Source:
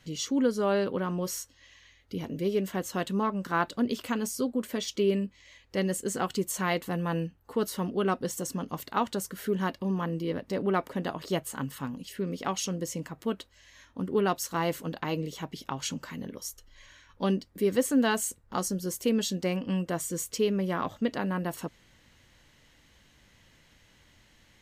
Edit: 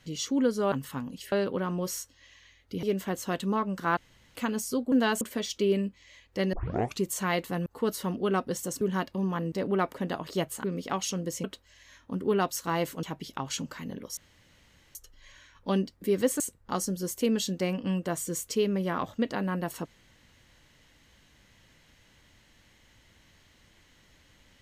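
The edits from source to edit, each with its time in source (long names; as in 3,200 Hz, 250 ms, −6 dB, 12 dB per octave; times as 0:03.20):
0:02.23–0:02.50: remove
0:03.64–0:04.02: fill with room tone
0:05.91: tape start 0.48 s
0:07.04–0:07.40: remove
0:08.55–0:09.48: remove
0:10.19–0:10.47: remove
0:11.59–0:12.19: move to 0:00.72
0:12.99–0:13.31: remove
0:14.90–0:15.35: remove
0:16.49: splice in room tone 0.78 s
0:17.94–0:18.23: move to 0:04.59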